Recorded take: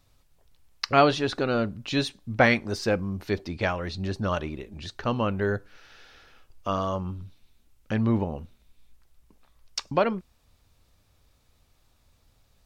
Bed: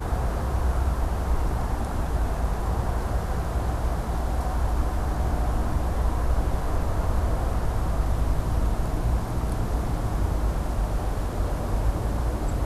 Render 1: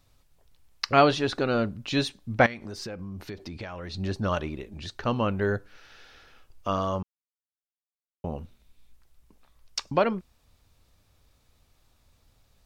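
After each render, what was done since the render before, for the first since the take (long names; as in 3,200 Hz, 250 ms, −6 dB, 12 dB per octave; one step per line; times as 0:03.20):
0:02.46–0:03.94: downward compressor 10 to 1, threshold −33 dBFS
0:07.03–0:08.24: silence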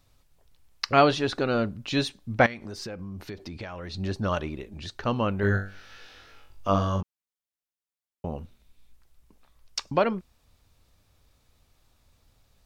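0:05.41–0:07.01: flutter between parallel walls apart 3.5 metres, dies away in 0.39 s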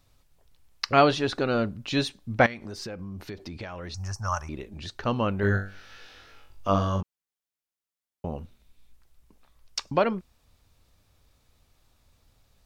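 0:03.94–0:04.49: drawn EQ curve 100 Hz 0 dB, 270 Hz −22 dB, 440 Hz −19 dB, 820 Hz +2 dB, 1,200 Hz +3 dB, 2,600 Hz −10 dB, 3,800 Hz −23 dB, 5,500 Hz +13 dB, 10,000 Hz +6 dB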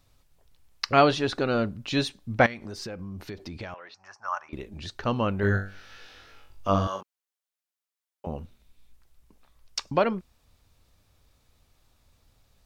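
0:03.74–0:04.53: band-pass filter 760–2,500 Hz
0:06.87–0:08.27: high-pass filter 490 Hz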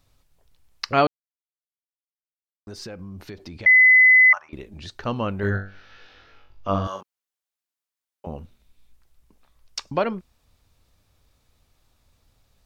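0:01.07–0:02.67: silence
0:03.66–0:04.33: beep over 2,020 Hz −9.5 dBFS
0:05.50–0:06.85: moving average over 5 samples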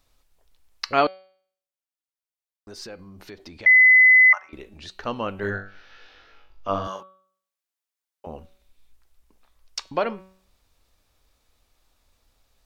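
parametric band 120 Hz −10.5 dB 1.7 octaves
hum removal 188.6 Hz, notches 24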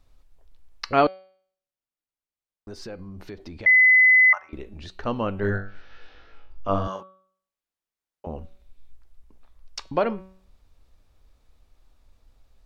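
spectral tilt −2 dB per octave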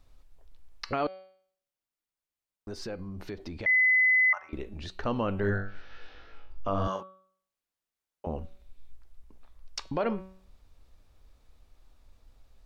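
downward compressor, threshold −20 dBFS, peak gain reduction 7.5 dB
brickwall limiter −19 dBFS, peak gain reduction 8 dB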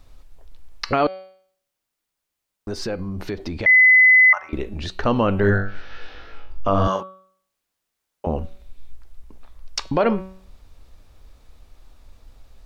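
level +10.5 dB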